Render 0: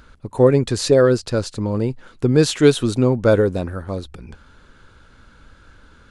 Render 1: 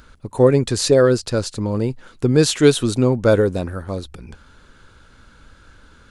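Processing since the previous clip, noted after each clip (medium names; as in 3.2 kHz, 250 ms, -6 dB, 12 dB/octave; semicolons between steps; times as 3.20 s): treble shelf 5 kHz +5.5 dB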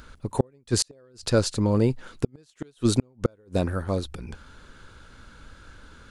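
inverted gate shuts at -8 dBFS, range -41 dB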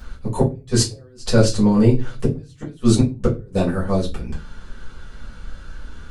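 reverberation RT60 0.25 s, pre-delay 4 ms, DRR -7 dB; trim -4 dB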